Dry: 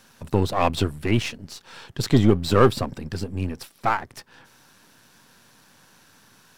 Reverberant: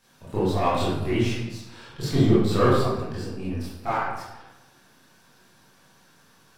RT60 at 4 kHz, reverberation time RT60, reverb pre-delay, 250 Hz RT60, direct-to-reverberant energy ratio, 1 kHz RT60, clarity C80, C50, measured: 0.65 s, 1.0 s, 18 ms, 1.1 s, −10.5 dB, 1.0 s, 2.5 dB, −1.5 dB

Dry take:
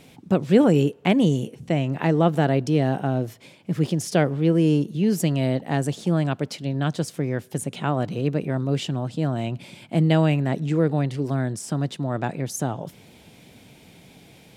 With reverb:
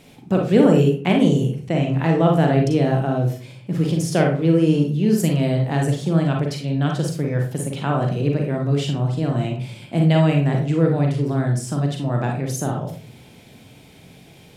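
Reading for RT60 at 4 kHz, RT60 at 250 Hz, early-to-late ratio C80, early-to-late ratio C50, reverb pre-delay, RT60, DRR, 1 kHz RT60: 0.25 s, 0.65 s, 11.5 dB, 4.5 dB, 38 ms, 0.40 s, 1.0 dB, 0.40 s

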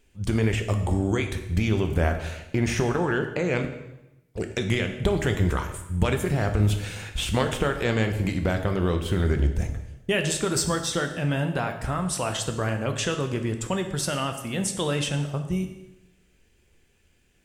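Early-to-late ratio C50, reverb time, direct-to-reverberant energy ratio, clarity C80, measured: 9.0 dB, 0.95 s, 5.5 dB, 11.0 dB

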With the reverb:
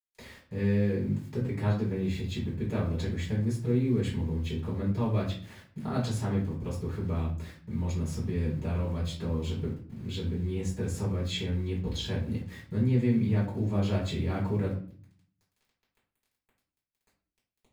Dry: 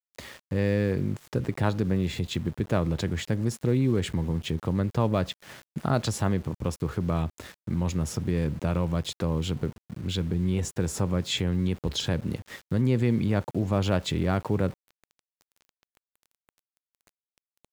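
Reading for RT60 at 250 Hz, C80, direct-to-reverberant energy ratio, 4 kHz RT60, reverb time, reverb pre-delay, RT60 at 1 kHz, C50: 0.75 s, 12.0 dB, −6.0 dB, 0.35 s, 0.50 s, 4 ms, 0.40 s, 6.5 dB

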